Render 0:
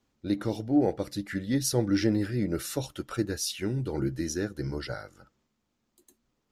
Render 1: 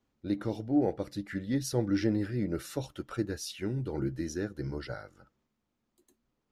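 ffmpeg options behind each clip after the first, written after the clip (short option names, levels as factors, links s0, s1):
-af "highshelf=f=3900:g=-7.5,volume=0.708"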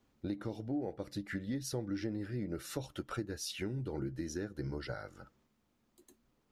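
-af "acompressor=threshold=0.00794:ratio=4,volume=1.78"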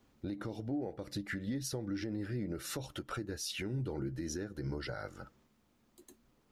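-af "alimiter=level_in=2.99:limit=0.0631:level=0:latency=1:release=122,volume=0.335,volume=1.68"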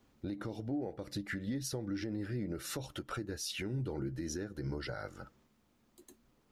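-af anull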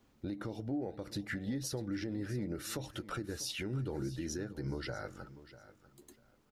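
-af "aecho=1:1:645|1290:0.158|0.0365"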